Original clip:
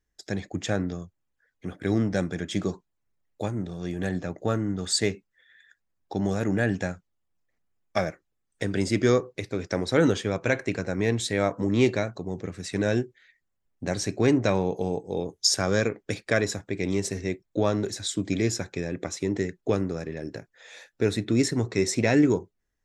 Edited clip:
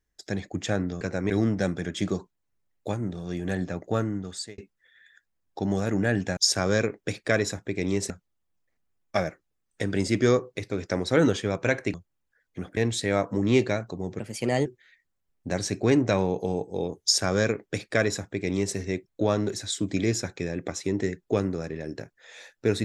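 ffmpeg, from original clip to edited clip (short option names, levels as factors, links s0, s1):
-filter_complex "[0:a]asplit=10[s0][s1][s2][s3][s4][s5][s6][s7][s8][s9];[s0]atrim=end=1.012[s10];[s1]atrim=start=10.748:end=11.042[s11];[s2]atrim=start=1.838:end=5.12,asetpts=PTS-STARTPTS,afade=t=out:st=2.702:d=0.58[s12];[s3]atrim=start=5.12:end=6.912,asetpts=PTS-STARTPTS,afade=t=in:d=0.004:c=hsin[s13];[s4]atrim=start=15.388:end=17.122[s14];[s5]atrim=start=6.908:end=10.752[s15];[s6]atrim=start=1.008:end=1.842[s16];[s7]atrim=start=11.038:end=12.464[s17];[s8]atrim=start=12.46:end=13.02,asetpts=PTS-STARTPTS,asetrate=52920,aresample=44100[s18];[s9]atrim=start=13.016[s19];[s10][s11]acrossfade=d=0.004:c1=hsin:c2=hsin[s20];[s12][s13]concat=n=2:v=0:a=1[s21];[s20][s21]acrossfade=d=0.004:c1=hsin:c2=hsin[s22];[s22][s14]acrossfade=d=0.004:c1=hsin:c2=hsin[s23];[s23][s15]acrossfade=d=0.004:c1=hsin:c2=hsin[s24];[s24][s16]acrossfade=d=0.004:c1=hsin:c2=hsin[s25];[s25][s17]acrossfade=d=0.004:c1=hsin:c2=hsin[s26];[s26][s18]acrossfade=d=0.004:c1=hsin:c2=hsin[s27];[s27][s19]acrossfade=d=0.004:c1=hsin:c2=hsin"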